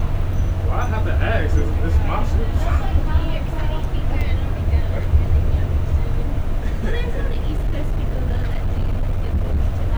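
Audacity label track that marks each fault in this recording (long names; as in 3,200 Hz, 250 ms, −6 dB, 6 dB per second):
4.210000	4.220000	drop-out 5.2 ms
7.280000	9.590000	clipping −15 dBFS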